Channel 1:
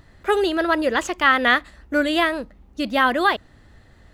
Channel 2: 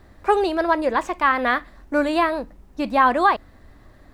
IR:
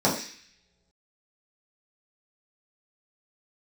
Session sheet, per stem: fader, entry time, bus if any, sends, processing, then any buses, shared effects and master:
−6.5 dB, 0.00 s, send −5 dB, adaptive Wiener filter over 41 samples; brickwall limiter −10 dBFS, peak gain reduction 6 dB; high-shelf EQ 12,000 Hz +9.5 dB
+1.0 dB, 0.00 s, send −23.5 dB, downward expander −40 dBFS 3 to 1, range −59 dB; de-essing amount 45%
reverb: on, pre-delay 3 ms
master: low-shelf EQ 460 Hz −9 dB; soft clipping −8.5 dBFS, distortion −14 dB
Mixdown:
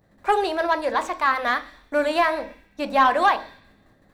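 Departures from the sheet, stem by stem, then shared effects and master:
stem 1 −6.5 dB → −14.5 dB
stem 2: polarity flipped

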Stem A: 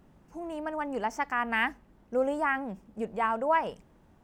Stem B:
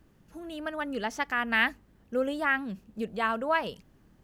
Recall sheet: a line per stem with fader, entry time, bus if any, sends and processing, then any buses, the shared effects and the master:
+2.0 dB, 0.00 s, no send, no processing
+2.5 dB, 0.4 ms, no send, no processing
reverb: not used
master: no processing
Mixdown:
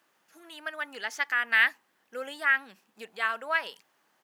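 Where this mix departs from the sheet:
stem A +2.0 dB → −6.0 dB
master: extra high-pass filter 870 Hz 12 dB per octave

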